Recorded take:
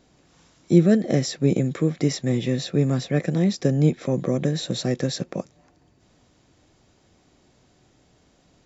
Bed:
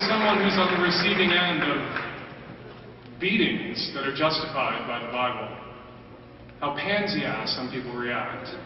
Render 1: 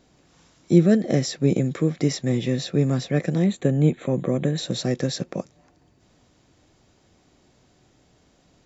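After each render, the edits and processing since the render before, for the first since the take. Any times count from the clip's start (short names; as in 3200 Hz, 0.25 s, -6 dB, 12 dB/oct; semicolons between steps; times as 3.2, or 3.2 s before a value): 3.46–4.58 Butterworth band-stop 5200 Hz, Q 1.8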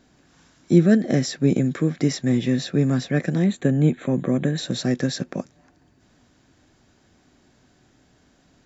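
thirty-one-band EQ 250 Hz +5 dB, 500 Hz -3 dB, 1600 Hz +7 dB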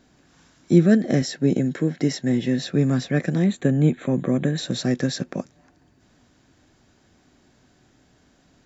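1.22–2.63 notch comb 1200 Hz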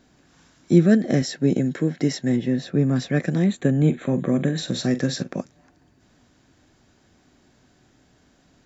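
2.36–2.96 high shelf 2000 Hz -8.5 dB; 3.78–5.31 doubler 44 ms -13 dB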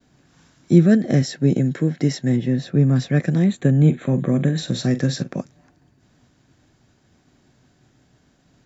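expander -56 dBFS; bell 130 Hz +6.5 dB 0.85 oct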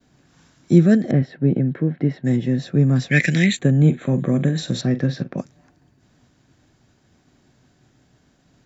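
1.11–2.25 air absorption 490 m; 3.11–3.59 resonant high shelf 1500 Hz +12 dB, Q 3; 4.81–5.38 air absorption 210 m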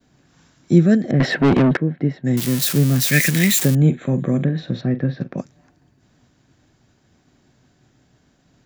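1.2–1.77 overdrive pedal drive 31 dB, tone 5400 Hz, clips at -7 dBFS; 2.37–3.75 switching spikes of -11 dBFS; 4.44–5.21 air absorption 290 m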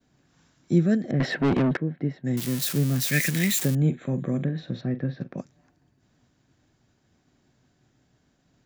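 gain -7.5 dB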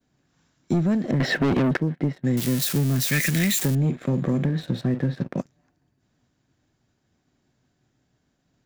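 sample leveller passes 2; compressor, threshold -19 dBFS, peak gain reduction 7 dB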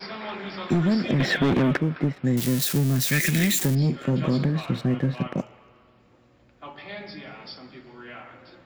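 add bed -13 dB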